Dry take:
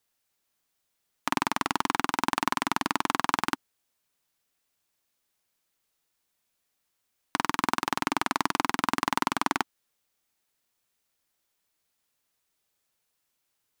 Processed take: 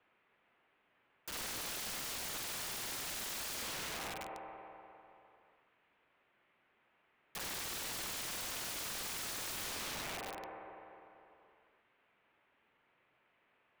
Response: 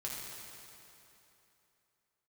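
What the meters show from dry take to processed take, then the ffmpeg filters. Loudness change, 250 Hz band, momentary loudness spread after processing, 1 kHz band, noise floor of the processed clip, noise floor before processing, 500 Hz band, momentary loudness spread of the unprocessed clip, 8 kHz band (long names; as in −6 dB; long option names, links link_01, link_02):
−11.0 dB, −20.0 dB, 13 LU, −19.0 dB, −76 dBFS, −78 dBFS, −9.5 dB, 4 LU, −1.0 dB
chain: -filter_complex "[0:a]highpass=frequency=600:width_type=q:width=0.5412,highpass=frequency=600:width_type=q:width=1.307,lowpass=frequency=3000:width_type=q:width=0.5176,lowpass=frequency=3000:width_type=q:width=0.7071,lowpass=frequency=3000:width_type=q:width=1.932,afreqshift=-370,asplit=2[link_01][link_02];[1:a]atrim=start_sample=2205,lowshelf=frequency=160:gain=8[link_03];[link_02][link_03]afir=irnorm=-1:irlink=0,volume=-12.5dB[link_04];[link_01][link_04]amix=inputs=2:normalize=0,aeval=exprs='(mod(266*val(0)+1,2)-1)/266':channel_layout=same,volume=11.5dB"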